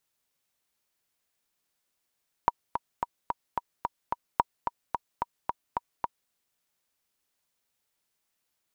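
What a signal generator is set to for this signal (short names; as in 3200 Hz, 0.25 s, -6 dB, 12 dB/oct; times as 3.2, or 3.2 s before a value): metronome 219 bpm, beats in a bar 7, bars 2, 952 Hz, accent 7 dB -7.5 dBFS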